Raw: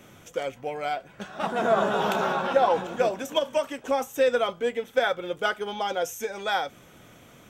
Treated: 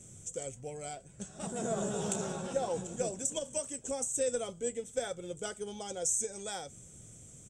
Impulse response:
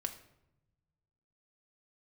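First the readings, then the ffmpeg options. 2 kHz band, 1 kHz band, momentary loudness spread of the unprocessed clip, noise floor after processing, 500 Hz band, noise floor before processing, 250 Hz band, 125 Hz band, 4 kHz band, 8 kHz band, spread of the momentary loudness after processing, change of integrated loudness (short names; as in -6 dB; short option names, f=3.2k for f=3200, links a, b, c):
-18.5 dB, -17.0 dB, 10 LU, -54 dBFS, -11.0 dB, -52 dBFS, -6.0 dB, -2.0 dB, -12.0 dB, +9.5 dB, 12 LU, -9.0 dB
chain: -af "firequalizer=gain_entry='entry(110,0);entry(270,-12);entry(410,-10);entry(630,-16);entry(1000,-23);entry(4400,-12);entry(7900,14);entry(13000,-23)':delay=0.05:min_phase=1,volume=2.5dB"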